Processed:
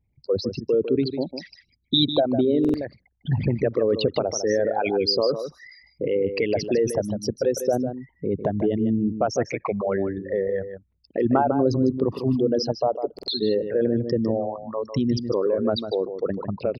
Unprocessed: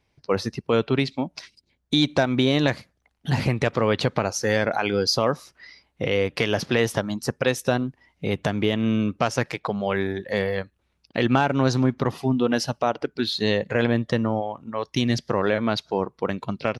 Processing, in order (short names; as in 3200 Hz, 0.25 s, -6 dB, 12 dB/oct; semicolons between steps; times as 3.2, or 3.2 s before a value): formant sharpening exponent 3; outdoor echo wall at 26 m, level -9 dB; stuck buffer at 2.6/13.14, samples 2048, times 2